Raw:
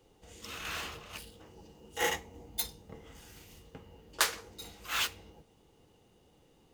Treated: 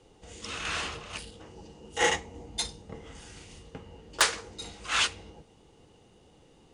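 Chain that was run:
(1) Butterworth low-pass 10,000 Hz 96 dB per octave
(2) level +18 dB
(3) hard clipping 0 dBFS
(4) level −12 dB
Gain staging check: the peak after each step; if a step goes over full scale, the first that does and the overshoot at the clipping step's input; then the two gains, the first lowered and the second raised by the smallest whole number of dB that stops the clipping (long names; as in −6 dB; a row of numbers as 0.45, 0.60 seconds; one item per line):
−9.0, +9.0, 0.0, −12.0 dBFS
step 2, 9.0 dB
step 2 +9 dB, step 4 −3 dB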